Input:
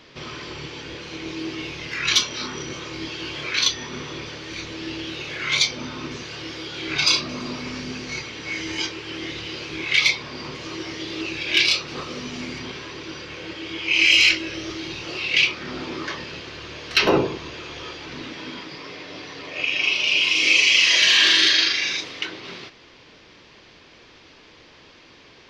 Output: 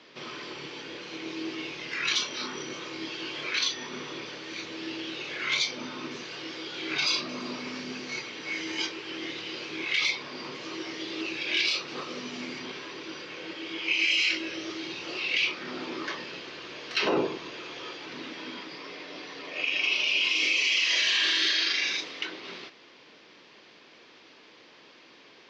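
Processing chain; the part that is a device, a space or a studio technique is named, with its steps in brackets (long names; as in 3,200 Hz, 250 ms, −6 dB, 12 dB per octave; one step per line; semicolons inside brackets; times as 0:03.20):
DJ mixer with the lows and highs turned down (three-way crossover with the lows and the highs turned down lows −23 dB, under 170 Hz, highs −21 dB, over 7,800 Hz; brickwall limiter −12 dBFS, peak gain reduction 7 dB)
level −4 dB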